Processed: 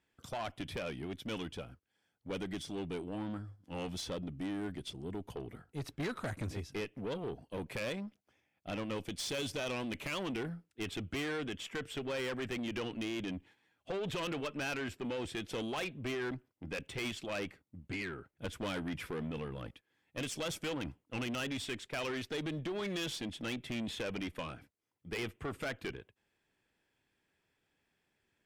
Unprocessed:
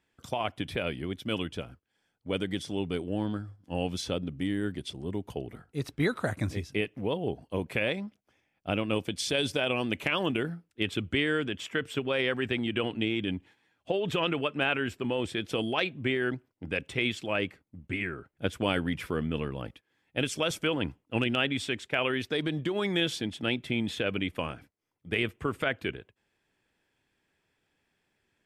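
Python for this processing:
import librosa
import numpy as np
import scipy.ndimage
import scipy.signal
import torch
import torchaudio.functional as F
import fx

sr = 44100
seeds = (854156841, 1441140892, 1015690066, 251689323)

y = fx.tube_stage(x, sr, drive_db=30.0, bias=0.3)
y = y * librosa.db_to_amplitude(-3.0)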